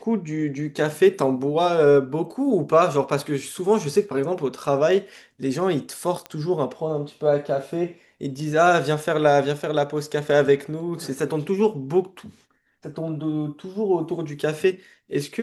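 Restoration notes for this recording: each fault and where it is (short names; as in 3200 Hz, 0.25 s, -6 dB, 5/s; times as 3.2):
6.26 pop -18 dBFS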